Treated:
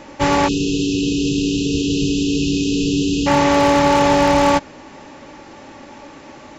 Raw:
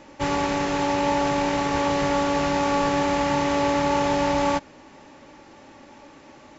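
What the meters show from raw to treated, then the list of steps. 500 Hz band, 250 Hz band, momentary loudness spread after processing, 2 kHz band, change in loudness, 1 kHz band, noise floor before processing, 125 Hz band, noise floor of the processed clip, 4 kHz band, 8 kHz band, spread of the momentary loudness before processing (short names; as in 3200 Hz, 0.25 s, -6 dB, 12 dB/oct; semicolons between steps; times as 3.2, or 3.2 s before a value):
+5.0 dB, +8.5 dB, 5 LU, +4.5 dB, +6.0 dB, +4.0 dB, -49 dBFS, +8.5 dB, -40 dBFS, +8.5 dB, n/a, 2 LU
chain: spectral delete 0.48–3.27, 490–2500 Hz; wavefolder -14.5 dBFS; gain +8.5 dB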